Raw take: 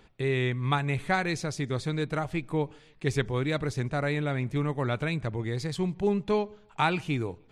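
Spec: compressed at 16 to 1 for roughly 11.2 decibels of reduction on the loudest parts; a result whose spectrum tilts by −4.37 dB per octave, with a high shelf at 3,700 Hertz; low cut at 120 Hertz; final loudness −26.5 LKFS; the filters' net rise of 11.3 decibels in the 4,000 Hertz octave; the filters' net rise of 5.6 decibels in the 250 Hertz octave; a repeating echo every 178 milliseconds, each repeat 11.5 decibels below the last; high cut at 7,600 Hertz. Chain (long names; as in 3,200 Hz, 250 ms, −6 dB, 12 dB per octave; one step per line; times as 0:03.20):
high-pass filter 120 Hz
low-pass filter 7,600 Hz
parametric band 250 Hz +8.5 dB
high-shelf EQ 3,700 Hz +8 dB
parametric band 4,000 Hz +8.5 dB
downward compressor 16 to 1, threshold −28 dBFS
repeating echo 178 ms, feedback 27%, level −11.5 dB
level +7 dB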